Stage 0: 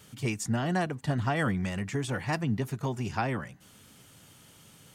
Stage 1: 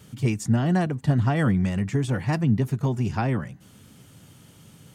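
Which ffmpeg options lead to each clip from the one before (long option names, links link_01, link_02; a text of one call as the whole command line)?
ffmpeg -i in.wav -af "equalizer=frequency=130:width=0.34:gain=9" out.wav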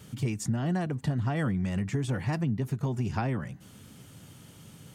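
ffmpeg -i in.wav -af "acompressor=threshold=-26dB:ratio=5" out.wav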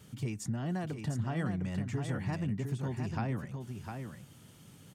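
ffmpeg -i in.wav -af "aecho=1:1:705:0.501,volume=-6dB" out.wav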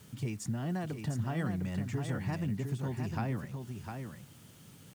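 ffmpeg -i in.wav -af "acrusher=bits=9:mix=0:aa=0.000001" out.wav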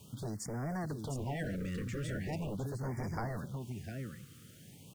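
ffmpeg -i in.wav -filter_complex "[0:a]acrossover=split=610[link_01][link_02];[link_01]aeval=exprs='0.0224*(abs(mod(val(0)/0.0224+3,4)-2)-1)':channel_layout=same[link_03];[link_03][link_02]amix=inputs=2:normalize=0,afftfilt=real='re*(1-between(b*sr/1024,760*pow(3400/760,0.5+0.5*sin(2*PI*0.41*pts/sr))/1.41,760*pow(3400/760,0.5+0.5*sin(2*PI*0.41*pts/sr))*1.41))':imag='im*(1-between(b*sr/1024,760*pow(3400/760,0.5+0.5*sin(2*PI*0.41*pts/sr))/1.41,760*pow(3400/760,0.5+0.5*sin(2*PI*0.41*pts/sr))*1.41))':win_size=1024:overlap=0.75" out.wav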